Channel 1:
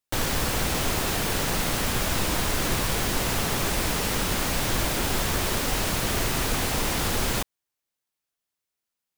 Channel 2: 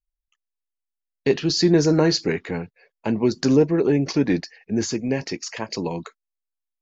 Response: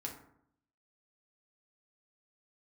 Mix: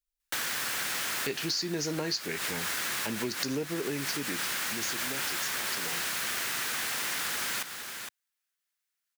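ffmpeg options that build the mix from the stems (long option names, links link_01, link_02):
-filter_complex "[0:a]highpass=160,equalizer=frequency=1600:width_type=o:width=1.1:gain=9,adelay=200,volume=-6.5dB,asplit=2[link_01][link_02];[link_02]volume=-11.5dB[link_03];[1:a]volume=-2dB,afade=type=out:start_time=3.62:duration=0.73:silence=0.446684,asplit=2[link_04][link_05];[link_05]apad=whole_len=413261[link_06];[link_01][link_06]sidechaincompress=threshold=-31dB:ratio=3:attack=8:release=140[link_07];[link_03]aecho=0:1:461:1[link_08];[link_07][link_04][link_08]amix=inputs=3:normalize=0,tiltshelf=frequency=1400:gain=-7,acompressor=threshold=-29dB:ratio=6"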